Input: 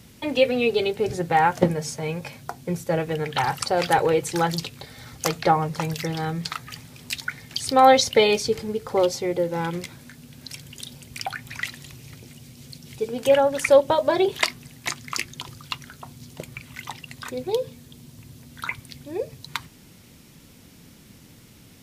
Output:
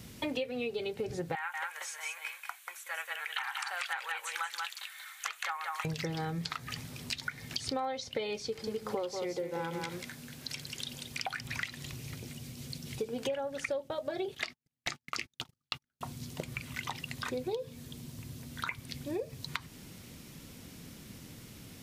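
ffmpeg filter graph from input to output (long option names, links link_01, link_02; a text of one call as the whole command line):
ffmpeg -i in.wav -filter_complex "[0:a]asettb=1/sr,asplit=3[link_01][link_02][link_03];[link_01]atrim=end=1.354[link_04];[link_02]atrim=start=1.35:end=5.85,asetpts=PTS-STARTPTS,afade=type=in:duration=0.004:curve=qsin,afade=type=out:start_time=4.496:duration=0.004:curve=qsin,highpass=frequency=1200:width=0.5412,highpass=frequency=1200:width=1.3066,equalizer=frequency=5000:width=2:gain=-12.5,aecho=1:1:186:0.531,atrim=end_sample=198450[link_05];[link_03]atrim=start=5.846[link_06];[link_04][link_05]acrossfade=duration=0.004:curve1=hsin:curve2=qsin[link_07];[link_07][link_06]acrossfade=duration=0.004:curve1=qsin:curve2=hsin,asettb=1/sr,asplit=3[link_08][link_09][link_10];[link_08]atrim=end=8.454[link_11];[link_09]atrim=start=8.45:end=11.41,asetpts=PTS-STARTPTS,afade=type=in:duration=0.004:curve=qsin,afade=type=out:start_time=2.956:duration=0.004:curve=qsin,lowshelf=frequency=250:gain=-8,aecho=1:1:187:0.422,atrim=end_sample=130536[link_12];[link_10]atrim=start=11.406[link_13];[link_11][link_12]acrossfade=duration=0.004:curve1=hsin:curve2=qsin[link_14];[link_14][link_13]acrossfade=duration=0.004:curve1=qsin:curve2=hsin,asettb=1/sr,asplit=3[link_15][link_16][link_17];[link_15]atrim=end=13.374[link_18];[link_16]atrim=start=13.37:end=16.01,asetpts=PTS-STARTPTS,afade=type=in:duration=0.004:curve=qsin,afade=type=out:start_time=2.636:duration=0.004:curve=qsin,agate=range=-47dB:threshold=-37dB:ratio=16:release=100:detection=peak,asuperstop=centerf=1000:order=4:qfactor=6.1[link_19];[link_17]atrim=start=16.006[link_20];[link_18][link_19]acrossfade=duration=0.004:curve1=hsin:curve2=qsin[link_21];[link_21][link_20]acrossfade=duration=0.004:curve1=qsin:curve2=hsin,acrossover=split=6600[link_22][link_23];[link_23]acompressor=threshold=-47dB:ratio=4:attack=1:release=60[link_24];[link_22][link_24]amix=inputs=2:normalize=0,bandreject=frequency=870:width=26,acompressor=threshold=-32dB:ratio=12" out.wav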